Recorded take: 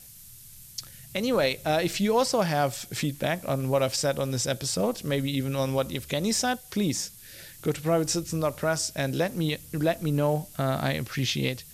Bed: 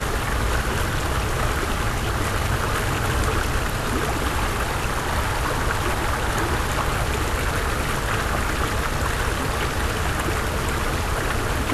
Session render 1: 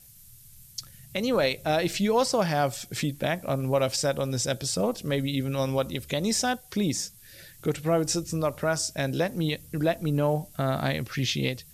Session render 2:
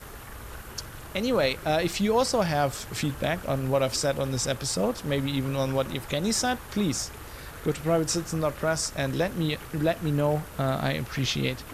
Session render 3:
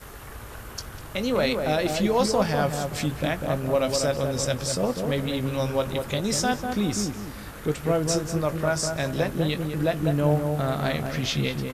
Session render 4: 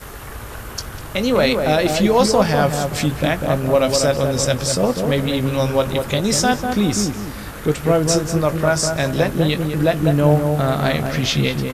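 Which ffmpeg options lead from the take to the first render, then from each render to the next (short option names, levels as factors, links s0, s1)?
-af "afftdn=nr=6:nf=-48"
-filter_complex "[1:a]volume=0.112[s0];[0:a][s0]amix=inputs=2:normalize=0"
-filter_complex "[0:a]asplit=2[s0][s1];[s1]adelay=20,volume=0.266[s2];[s0][s2]amix=inputs=2:normalize=0,asplit=2[s3][s4];[s4]adelay=198,lowpass=f=1000:p=1,volume=0.668,asplit=2[s5][s6];[s6]adelay=198,lowpass=f=1000:p=1,volume=0.4,asplit=2[s7][s8];[s8]adelay=198,lowpass=f=1000:p=1,volume=0.4,asplit=2[s9][s10];[s10]adelay=198,lowpass=f=1000:p=1,volume=0.4,asplit=2[s11][s12];[s12]adelay=198,lowpass=f=1000:p=1,volume=0.4[s13];[s3][s5][s7][s9][s11][s13]amix=inputs=6:normalize=0"
-af "volume=2.37,alimiter=limit=0.708:level=0:latency=1"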